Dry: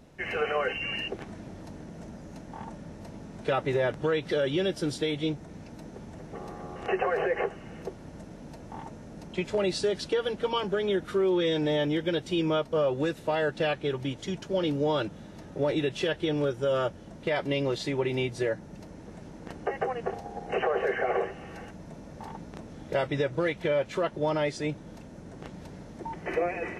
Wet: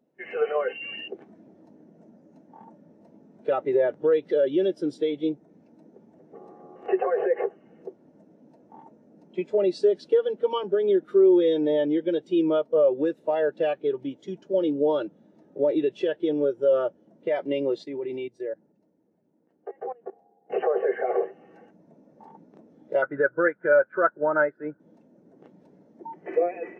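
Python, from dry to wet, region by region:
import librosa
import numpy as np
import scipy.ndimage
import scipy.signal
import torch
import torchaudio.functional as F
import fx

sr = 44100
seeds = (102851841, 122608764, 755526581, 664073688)

y = fx.chain(x, sr, fx.level_steps(step_db=16),
    fx.band_widen(depth_pct=40), at=(17.84, 20.5))
y = fx.chain(y, sr, fx.lowpass_res(hz=1500.0, q=11.0),
    fx.low_shelf(hz=94.0, db=8.5),
    fx.upward_expand(threshold_db=-38.0, expansion=1.5), at=(23.02, 24.8))
y = scipy.signal.sosfilt(scipy.signal.butter(2, 300.0, 'highpass', fs=sr, output='sos'), y)
y = fx.low_shelf(y, sr, hz=460.0, db=7.5)
y = fx.spectral_expand(y, sr, expansion=1.5)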